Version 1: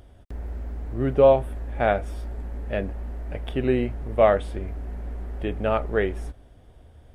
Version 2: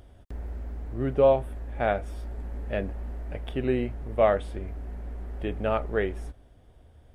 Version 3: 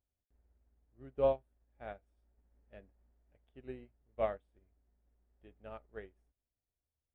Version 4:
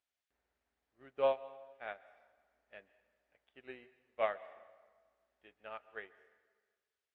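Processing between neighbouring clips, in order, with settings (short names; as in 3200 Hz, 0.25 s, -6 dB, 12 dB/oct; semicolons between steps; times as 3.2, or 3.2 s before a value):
vocal rider within 4 dB 2 s; gain -5 dB
upward expander 2.5:1, over -36 dBFS; gain -9 dB
band-pass 2200 Hz, Q 0.8; plate-style reverb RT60 1.5 s, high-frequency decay 0.75×, pre-delay 0.115 s, DRR 17 dB; gain +8.5 dB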